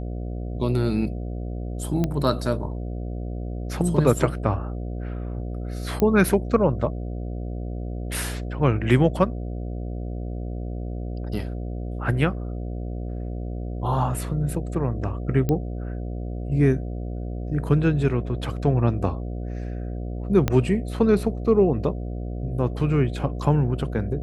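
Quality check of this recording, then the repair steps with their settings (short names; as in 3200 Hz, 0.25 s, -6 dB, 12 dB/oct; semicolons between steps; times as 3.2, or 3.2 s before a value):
buzz 60 Hz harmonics 12 -30 dBFS
2.04 pop -12 dBFS
6 pop -11 dBFS
15.49 pop -12 dBFS
20.48 pop -8 dBFS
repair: de-click; de-hum 60 Hz, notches 12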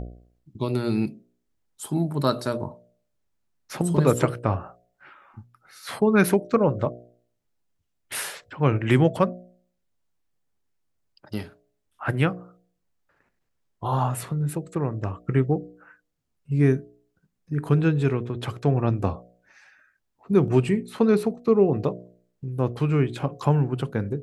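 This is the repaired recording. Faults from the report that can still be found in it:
20.48 pop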